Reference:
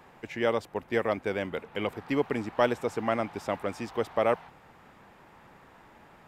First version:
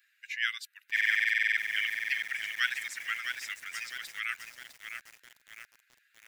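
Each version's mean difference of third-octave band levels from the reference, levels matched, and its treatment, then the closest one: 17.0 dB: per-bin expansion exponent 1.5; steep high-pass 1500 Hz 72 dB/oct; stuck buffer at 0.92/5.23, samples 2048, times 13; lo-fi delay 0.657 s, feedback 55%, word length 9-bit, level -6 dB; gain +8.5 dB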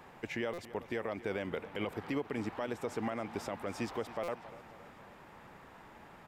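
6.0 dB: compressor, threshold -29 dBFS, peak gain reduction 10.5 dB; limiter -25 dBFS, peak gain reduction 9.5 dB; on a send: feedback echo 0.273 s, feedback 55%, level -17 dB; on the sum: stuck buffer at 0.53/4.23, samples 256, times 8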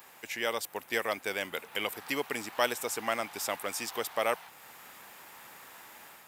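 10.0 dB: AGC gain up to 4 dB; high shelf 8500 Hz +11 dB; in parallel at -0.5 dB: compressor, threshold -36 dBFS, peak gain reduction 20 dB; on the sum: tilt +4 dB/oct; gain -7.5 dB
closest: second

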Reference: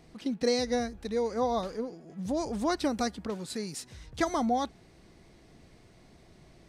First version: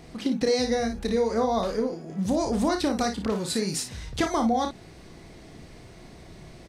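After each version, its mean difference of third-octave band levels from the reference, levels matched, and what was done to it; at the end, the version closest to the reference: 4.0 dB: compressor 6:1, threshold -31 dBFS, peak gain reduction 9 dB; on a send: early reflections 31 ms -8 dB, 56 ms -8.5 dB; on the sum: gain +9 dB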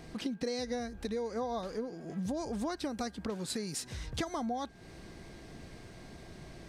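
6.5 dB: compressor 6:1, threshold -41 dBFS, peak gain reduction 17.5 dB; whine 1600 Hz -71 dBFS; gain +7 dB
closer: first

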